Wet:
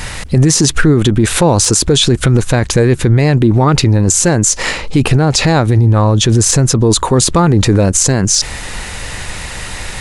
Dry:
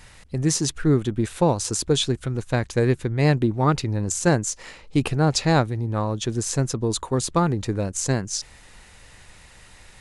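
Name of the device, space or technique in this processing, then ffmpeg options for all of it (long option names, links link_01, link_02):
loud club master: -filter_complex "[0:a]asettb=1/sr,asplit=3[link_01][link_02][link_03];[link_01]atrim=end=5.784[link_04];[link_02]atrim=start=5.78:end=6.77,asetpts=PTS-STARTPTS,afade=type=in:duration=0.004:curve=qsin,afade=type=out:start_time=0.986:duration=0.004:curve=qsin,equalizer=frequency=84:width=1.2:gain=5[link_05];[link_03]atrim=start=6.766[link_06];[link_04][link_05]acrossfade=duration=0.004:curve1=hsin:curve2=qsin[link_07];[link_07][link_06]acrossfade=duration=0.004:curve1=qsin:curve2=hsin,acompressor=threshold=-24dB:ratio=2,asoftclip=type=hard:threshold=-14.5dB,alimiter=level_in=25dB:limit=-1dB:release=50:level=0:latency=1,volume=-1dB"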